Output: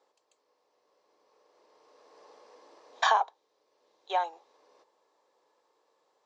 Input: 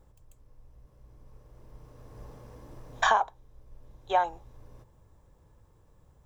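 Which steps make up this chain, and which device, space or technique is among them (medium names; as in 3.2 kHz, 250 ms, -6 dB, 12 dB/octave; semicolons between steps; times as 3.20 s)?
3.23–4.33 s: peaking EQ 870 Hz -3 dB 2.2 oct; phone speaker on a table (cabinet simulation 430–6600 Hz, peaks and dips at 590 Hz -3 dB, 1.5 kHz -4 dB, 4.4 kHz +7 dB)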